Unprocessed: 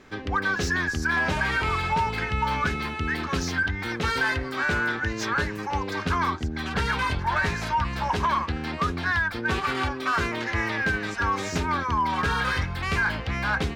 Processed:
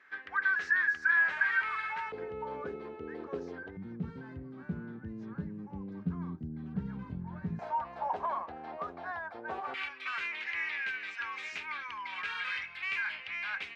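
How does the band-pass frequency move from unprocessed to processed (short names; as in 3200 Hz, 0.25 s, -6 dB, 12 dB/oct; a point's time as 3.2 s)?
band-pass, Q 3.7
1700 Hz
from 2.12 s 460 Hz
from 3.77 s 180 Hz
from 7.59 s 700 Hz
from 9.74 s 2400 Hz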